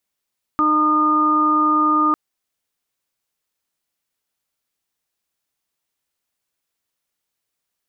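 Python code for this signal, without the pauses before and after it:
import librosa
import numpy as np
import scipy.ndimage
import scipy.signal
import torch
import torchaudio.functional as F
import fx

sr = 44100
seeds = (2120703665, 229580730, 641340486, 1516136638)

y = fx.additive_steady(sr, length_s=1.55, hz=305.0, level_db=-19.5, upper_db=(-15.5, -8.0, 5.0))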